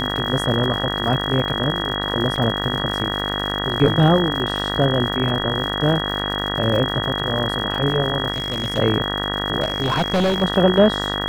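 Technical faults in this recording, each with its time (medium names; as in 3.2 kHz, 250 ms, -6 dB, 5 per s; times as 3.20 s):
buzz 50 Hz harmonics 39 -26 dBFS
crackle 140 per s -28 dBFS
whine 3.3 kHz -25 dBFS
2.36 s: dropout 4.6 ms
8.32–8.79 s: clipped -18.5 dBFS
9.62–10.43 s: clipped -15 dBFS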